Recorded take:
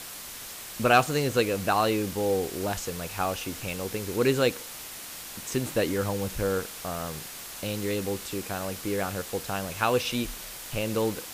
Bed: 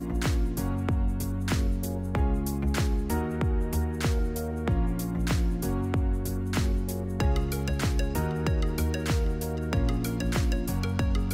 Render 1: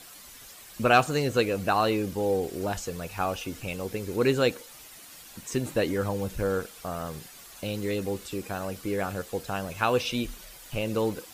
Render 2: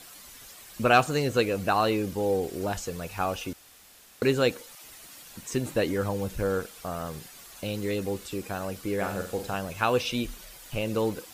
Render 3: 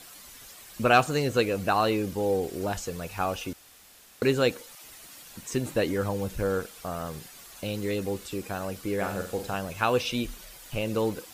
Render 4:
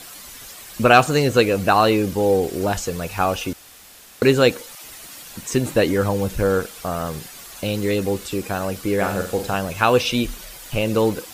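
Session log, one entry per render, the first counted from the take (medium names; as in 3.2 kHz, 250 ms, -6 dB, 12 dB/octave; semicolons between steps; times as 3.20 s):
noise reduction 10 dB, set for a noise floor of -41 dBFS
3.53–4.22 s: room tone; 4.75–5.30 s: phase dispersion lows, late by 99 ms, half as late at 370 Hz; 8.97–9.55 s: flutter echo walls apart 7.8 m, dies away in 0.4 s
no audible change
trim +8.5 dB; peak limiter -2 dBFS, peak gain reduction 1.5 dB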